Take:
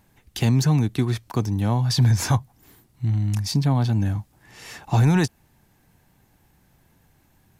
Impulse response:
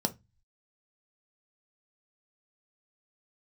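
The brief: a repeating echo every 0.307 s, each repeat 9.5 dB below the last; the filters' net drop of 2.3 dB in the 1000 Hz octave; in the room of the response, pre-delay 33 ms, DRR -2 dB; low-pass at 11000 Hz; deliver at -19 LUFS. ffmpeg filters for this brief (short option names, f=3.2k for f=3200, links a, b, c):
-filter_complex "[0:a]lowpass=11k,equalizer=f=1k:t=o:g=-3,aecho=1:1:307|614|921|1228:0.335|0.111|0.0365|0.012,asplit=2[a][b];[1:a]atrim=start_sample=2205,adelay=33[c];[b][c]afir=irnorm=-1:irlink=0,volume=-3.5dB[d];[a][d]amix=inputs=2:normalize=0,volume=-5.5dB"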